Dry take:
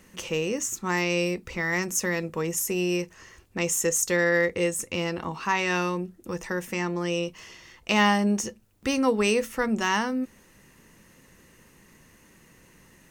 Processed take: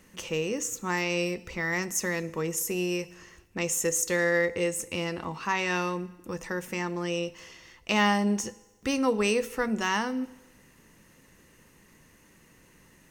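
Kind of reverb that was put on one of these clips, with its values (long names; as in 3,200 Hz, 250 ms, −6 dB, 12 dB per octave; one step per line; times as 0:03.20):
feedback delay network reverb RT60 1.1 s, low-frequency decay 0.85×, high-frequency decay 0.95×, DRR 16 dB
level −2.5 dB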